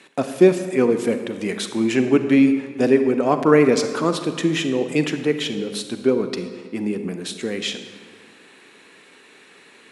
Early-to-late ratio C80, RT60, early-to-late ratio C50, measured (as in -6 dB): 10.0 dB, 1.7 s, 8.5 dB